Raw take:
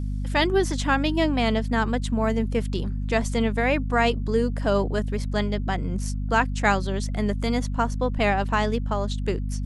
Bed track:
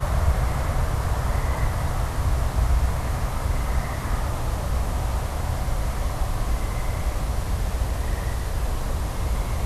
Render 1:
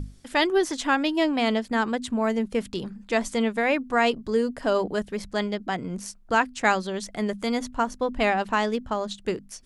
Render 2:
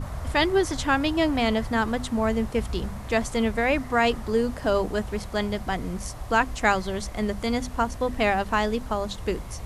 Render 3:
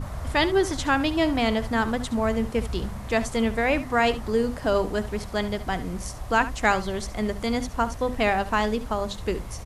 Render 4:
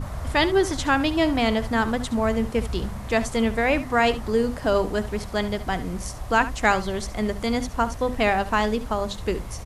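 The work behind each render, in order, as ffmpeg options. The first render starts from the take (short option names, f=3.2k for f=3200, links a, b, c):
-af "bandreject=f=50:t=h:w=6,bandreject=f=100:t=h:w=6,bandreject=f=150:t=h:w=6,bandreject=f=200:t=h:w=6,bandreject=f=250:t=h:w=6"
-filter_complex "[1:a]volume=-11dB[a];[0:a][a]amix=inputs=2:normalize=0"
-af "aecho=1:1:70:0.188"
-af "volume=1.5dB"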